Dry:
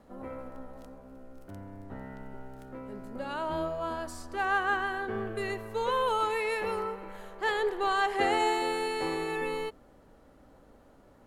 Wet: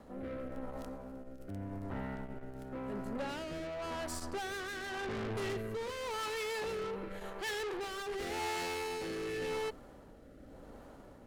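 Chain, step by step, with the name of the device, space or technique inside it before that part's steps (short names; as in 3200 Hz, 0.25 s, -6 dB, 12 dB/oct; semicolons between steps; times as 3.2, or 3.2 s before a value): 5.04–5.57 low shelf 360 Hz +8.5 dB; overdriven rotary cabinet (tube stage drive 41 dB, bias 0.35; rotary speaker horn 0.9 Hz); gain +7 dB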